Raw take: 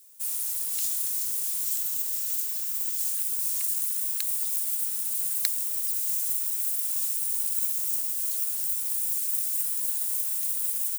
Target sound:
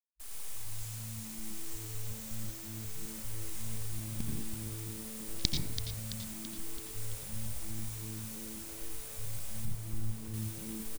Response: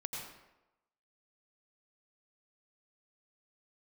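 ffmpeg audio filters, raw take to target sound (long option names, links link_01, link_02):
-filter_complex "[0:a]acrossover=split=9300[link_01][link_02];[link_02]acompressor=threshold=-33dB:ratio=4:attack=1:release=60[link_03];[link_01][link_03]amix=inputs=2:normalize=0,asettb=1/sr,asplit=3[link_04][link_05][link_06];[link_04]atrim=end=0.744[link_07];[link_05]atrim=start=0.74:end=1.44,asetpts=PTS-STARTPTS,afade=type=in:duration=0.004:curve=qsin,afade=type=out:start_time=0.696:duration=0.004:curve=qsin,aeval=exprs='(tanh(28.2*val(0)+0.1)-tanh(0.1))/28.2':channel_layout=same[link_08];[link_06]atrim=start=1.436[link_09];[link_07][link_08]acrossfade=duration=0.004:curve1=hsin:curve2=qsin[link_10];[link_10][link_09]acrossfade=duration=0.004:curve1=qsin:curve2=hsin,acrusher=bits=5:mix=0:aa=0.000001,aeval=exprs='0.501*(cos(1*acos(clip(val(0)/0.501,-1,1)))-cos(1*PI/2))+0.0398*(cos(4*acos(clip(val(0)/0.501,-1,1)))-cos(4*PI/2))+0.141*(cos(7*acos(clip(val(0)/0.501,-1,1)))-cos(7*PI/2))+0.0708*(cos(8*acos(clip(val(0)/0.501,-1,1)))-cos(8*PI/2))':channel_layout=same[link_11];[1:a]atrim=start_sample=2205[link_12];[link_11][link_12]afir=irnorm=-1:irlink=0,afwtdn=0.0141,asettb=1/sr,asplit=3[link_13][link_14][link_15];[link_13]atrim=end=9.654[link_16];[link_14]atrim=start=9.65:end=10.34,asetpts=PTS-STARTPTS,afade=type=in:duration=0.004:curve=qsin,afade=type=out:start_time=0.686:duration=0.004:curve=qsin,tiltshelf=frequency=800:gain=6.5[link_17];[link_15]atrim=start=10.336[link_18];[link_16][link_17]acrossfade=duration=0.004:curve1=hsin:curve2=qsin[link_19];[link_19][link_18]acrossfade=duration=0.004:curve1=qsin:curve2=hsin,asplit=7[link_20][link_21][link_22][link_23][link_24][link_25][link_26];[link_21]adelay=333,afreqshift=-110,volume=-9dB[link_27];[link_22]adelay=666,afreqshift=-220,volume=-14.2dB[link_28];[link_23]adelay=999,afreqshift=-330,volume=-19.4dB[link_29];[link_24]adelay=1332,afreqshift=-440,volume=-24.6dB[link_30];[link_25]adelay=1665,afreqshift=-550,volume=-29.8dB[link_31];[link_26]adelay=1998,afreqshift=-660,volume=-35dB[link_32];[link_20][link_27][link_28][link_29][link_30][link_31][link_32]amix=inputs=7:normalize=0,volume=5.5dB"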